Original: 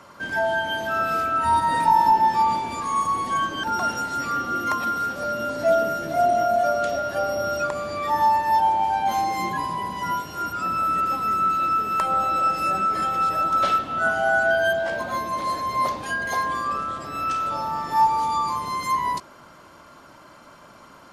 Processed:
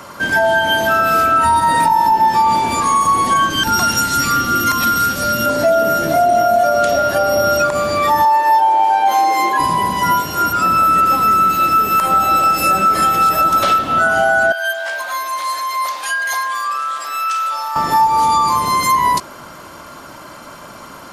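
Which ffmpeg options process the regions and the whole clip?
ffmpeg -i in.wav -filter_complex "[0:a]asettb=1/sr,asplit=3[link_01][link_02][link_03];[link_01]atrim=end=3.504[link_04];[link_02]atrim=start=3.5:end=5.46,asetpts=PTS-STARTPTS,afade=type=in:duration=0.004:curve=qsin,afade=type=out:start_time=1.956:duration=0.004:curve=qsin,equalizer=frequency=650:width_type=o:width=2.6:gain=-12.5,acontrast=29[link_05];[link_03]atrim=start=5.456[link_06];[link_04][link_05]acrossfade=duration=0.004:curve1=hsin:curve2=qsin[link_07];[link_07][link_06]acrossfade=duration=0.004:curve1=qsin:curve2=hsin,asettb=1/sr,asplit=3[link_08][link_09][link_10];[link_08]atrim=end=8.254[link_11];[link_09]atrim=start=8.25:end=9.6,asetpts=PTS-STARTPTS,afade=type=in:duration=0.004:curve=qsin,afade=type=out:start_time=1.346:duration=0.004:curve=qsin,highpass=frequency=330:width=0.5412,highpass=frequency=330:width=1.3066,highshelf=frequency=4500:gain=-7[link_12];[link_10]atrim=start=9.596[link_13];[link_11][link_12]acrossfade=duration=0.004:curve1=hsin:curve2=qsin[link_14];[link_14][link_13]acrossfade=duration=0.004:curve1=qsin:curve2=hsin,asettb=1/sr,asplit=3[link_15][link_16][link_17];[link_15]atrim=end=11.414[link_18];[link_16]atrim=start=11.41:end=13.65,asetpts=PTS-STARTPTS,afade=type=in:duration=0.004:curve=qsin,afade=type=out:start_time=2.236:duration=0.004:curve=qsin,highshelf=frequency=12000:gain=8.5,bandreject=frequency=52.52:width_type=h:width=4,bandreject=frequency=105.04:width_type=h:width=4,bandreject=frequency=157.56:width_type=h:width=4,bandreject=frequency=210.08:width_type=h:width=4,bandreject=frequency=262.6:width_type=h:width=4,bandreject=frequency=315.12:width_type=h:width=4,bandreject=frequency=367.64:width_type=h:width=4,bandreject=frequency=420.16:width_type=h:width=4,bandreject=frequency=472.68:width_type=h:width=4,bandreject=frequency=525.2:width_type=h:width=4,bandreject=frequency=577.72:width_type=h:width=4,bandreject=frequency=630.24:width_type=h:width=4,bandreject=frequency=682.76:width_type=h:width=4,bandreject=frequency=735.28:width_type=h:width=4,bandreject=frequency=787.8:width_type=h:width=4,bandreject=frequency=840.32:width_type=h:width=4,bandreject=frequency=892.84:width_type=h:width=4,bandreject=frequency=945.36:width_type=h:width=4,bandreject=frequency=997.88:width_type=h:width=4,bandreject=frequency=1050.4:width_type=h:width=4,bandreject=frequency=1102.92:width_type=h:width=4,bandreject=frequency=1155.44:width_type=h:width=4,bandreject=frequency=1207.96:width_type=h:width=4,bandreject=frequency=1260.48:width_type=h:width=4,bandreject=frequency=1313:width_type=h:width=4,bandreject=frequency=1365.52:width_type=h:width=4,bandreject=frequency=1418.04:width_type=h:width=4,bandreject=frequency=1470.56:width_type=h:width=4,bandreject=frequency=1523.08:width_type=h:width=4,bandreject=frequency=1575.6:width_type=h:width=4,bandreject=frequency=1628.12:width_type=h:width=4,bandreject=frequency=1680.64:width_type=h:width=4,bandreject=frequency=1733.16:width_type=h:width=4,bandreject=frequency=1785.68:width_type=h:width=4,bandreject=frequency=1838.2:width_type=h:width=4,bandreject=frequency=1890.72:width_type=h:width=4,bandreject=frequency=1943.24:width_type=h:width=4,bandreject=frequency=1995.76:width_type=h:width=4[link_19];[link_17]atrim=start=13.646[link_20];[link_18][link_19]acrossfade=duration=0.004:curve1=hsin:curve2=qsin[link_21];[link_21][link_20]acrossfade=duration=0.004:curve1=qsin:curve2=hsin,asettb=1/sr,asplit=3[link_22][link_23][link_24];[link_22]atrim=end=14.524[link_25];[link_23]atrim=start=14.52:end=17.76,asetpts=PTS-STARTPTS,afade=type=in:duration=0.004:curve=qsin,afade=type=out:start_time=3.236:duration=0.004:curve=qsin,acompressor=threshold=-29dB:ratio=2:attack=3.2:release=140:knee=1:detection=peak,highpass=1100[link_26];[link_24]atrim=start=17.756[link_27];[link_25][link_26]acrossfade=duration=0.004:curve1=hsin:curve2=qsin[link_28];[link_28][link_27]acrossfade=duration=0.004:curve1=qsin:curve2=hsin,highshelf=frequency=9100:gain=10.5,acompressor=threshold=-21dB:ratio=6,alimiter=level_in=16.5dB:limit=-1dB:release=50:level=0:latency=1,volume=-4.5dB" out.wav

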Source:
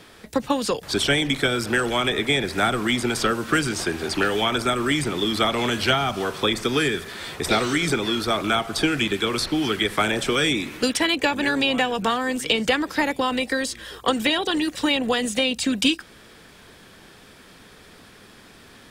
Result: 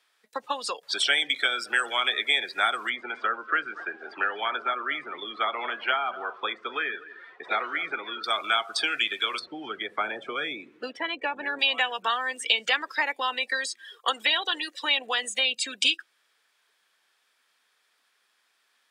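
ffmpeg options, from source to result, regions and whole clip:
ffmpeg -i in.wav -filter_complex "[0:a]asettb=1/sr,asplit=3[link_01][link_02][link_03];[link_01]atrim=end=2.894[link_04];[link_02]atrim=start=2.89:end=8.24,asetpts=PTS-STARTPTS,afade=type=in:duration=0.004:curve=qsin,afade=type=out:start_time=5.346:duration=0.004:curve=qsin,highpass=140,lowpass=2100,aecho=1:1:240:0.178,atrim=end_sample=235935[link_05];[link_03]atrim=start=8.236[link_06];[link_04][link_05]acrossfade=duration=0.004:curve1=hsin:curve2=qsin[link_07];[link_07][link_06]acrossfade=duration=0.004:curve1=qsin:curve2=hsin,asettb=1/sr,asplit=3[link_08][link_09][link_10];[link_08]atrim=end=9.394[link_11];[link_09]atrim=start=9.39:end=11.59,asetpts=PTS-STARTPTS,afade=type=in:duration=0.004:curve=qsin,afade=type=out:start_time=2.196:duration=0.004:curve=qsin,lowpass=frequency=1100:poles=1,lowshelf=frequency=280:gain=9[link_12];[link_10]atrim=start=11.586[link_13];[link_11][link_12]acrossfade=duration=0.004:curve1=hsin:curve2=qsin[link_14];[link_14][link_13]acrossfade=duration=0.004:curve1=qsin:curve2=hsin,afftdn=noise_reduction=19:noise_floor=-31,highpass=990" out.wav

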